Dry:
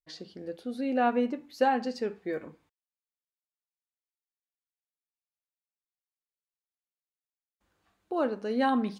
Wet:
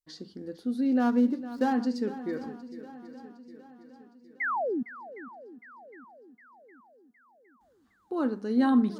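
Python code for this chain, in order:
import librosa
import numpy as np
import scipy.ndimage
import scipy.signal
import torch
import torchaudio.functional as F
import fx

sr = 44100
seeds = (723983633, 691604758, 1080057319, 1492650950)

p1 = fx.median_filter(x, sr, points=15, at=(0.99, 1.72), fade=0.02)
p2 = fx.graphic_eq_15(p1, sr, hz=(250, 630, 2500), db=(7, -9, -10))
p3 = fx.spec_paint(p2, sr, seeds[0], shape='fall', start_s=4.4, length_s=0.43, low_hz=220.0, high_hz=2200.0, level_db=-29.0)
y = p3 + fx.echo_swing(p3, sr, ms=761, ratio=1.5, feedback_pct=49, wet_db=-15.0, dry=0)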